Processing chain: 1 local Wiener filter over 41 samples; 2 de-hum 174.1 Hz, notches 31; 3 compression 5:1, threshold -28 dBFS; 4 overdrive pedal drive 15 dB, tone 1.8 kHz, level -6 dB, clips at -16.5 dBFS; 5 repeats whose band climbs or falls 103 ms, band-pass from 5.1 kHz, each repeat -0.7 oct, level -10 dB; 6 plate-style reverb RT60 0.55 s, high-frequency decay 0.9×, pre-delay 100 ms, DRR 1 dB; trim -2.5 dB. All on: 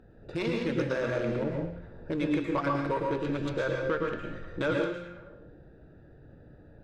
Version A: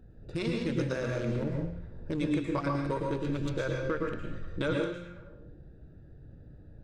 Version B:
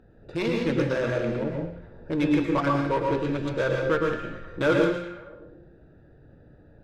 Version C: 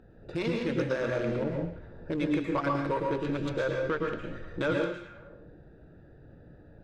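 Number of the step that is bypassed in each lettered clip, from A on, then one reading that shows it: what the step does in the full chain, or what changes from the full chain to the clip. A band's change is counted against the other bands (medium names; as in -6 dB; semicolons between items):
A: 4, momentary loudness spread change +9 LU; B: 3, mean gain reduction 3.5 dB; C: 2, momentary loudness spread change -1 LU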